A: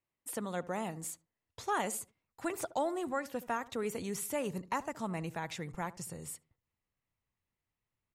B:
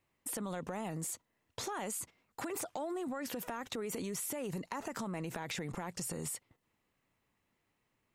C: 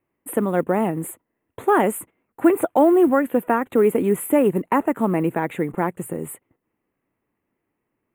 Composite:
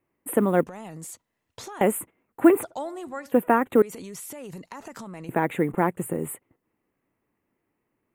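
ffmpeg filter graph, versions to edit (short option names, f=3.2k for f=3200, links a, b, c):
-filter_complex "[1:a]asplit=2[a][b];[2:a]asplit=4[c][d][e][f];[c]atrim=end=0.662[g];[a]atrim=start=0.658:end=1.812[h];[d]atrim=start=1.808:end=2.632[i];[0:a]atrim=start=2.628:end=3.322[j];[e]atrim=start=3.318:end=3.822[k];[b]atrim=start=3.818:end=5.292[l];[f]atrim=start=5.288[m];[g][h]acrossfade=d=0.004:c1=hsin:c2=hsin[n];[n][i]acrossfade=d=0.004:c1=hsin:c2=hsin[o];[o][j]acrossfade=d=0.004:c1=hsin:c2=hsin[p];[p][k]acrossfade=d=0.004:c1=hsin:c2=hsin[q];[q][l]acrossfade=d=0.004:c1=hsin:c2=hsin[r];[r][m]acrossfade=d=0.004:c1=hsin:c2=hsin"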